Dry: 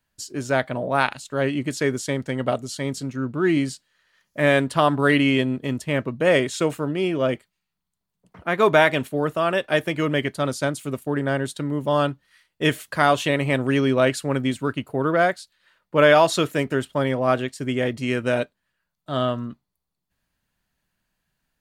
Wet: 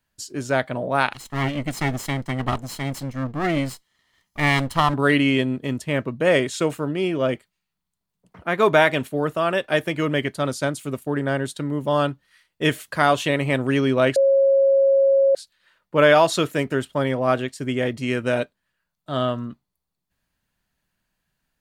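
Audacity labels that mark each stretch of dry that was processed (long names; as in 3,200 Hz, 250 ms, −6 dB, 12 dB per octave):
1.130000	4.940000	lower of the sound and its delayed copy delay 0.98 ms
14.160000	15.350000	beep over 546 Hz −13 dBFS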